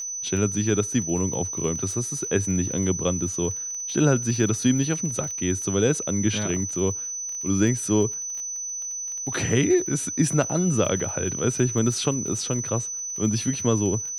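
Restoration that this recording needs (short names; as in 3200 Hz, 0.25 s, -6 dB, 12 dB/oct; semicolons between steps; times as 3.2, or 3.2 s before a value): de-click; notch 6000 Hz, Q 30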